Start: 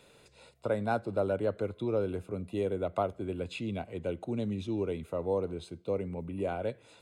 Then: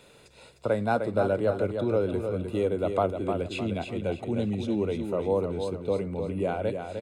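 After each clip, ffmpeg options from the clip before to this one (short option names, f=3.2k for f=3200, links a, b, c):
-af "aecho=1:1:305|610|915|1220:0.473|0.175|0.0648|0.024,volume=4.5dB"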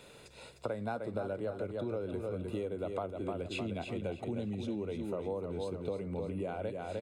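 -af "acompressor=threshold=-34dB:ratio=6"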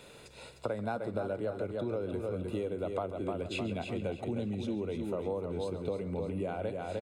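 -af "aecho=1:1:137:0.15,volume=2dB"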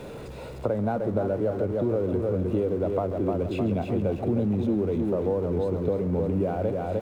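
-af "aeval=exprs='val(0)+0.5*0.00794*sgn(val(0))':c=same,tiltshelf=f=1.5k:g=9.5"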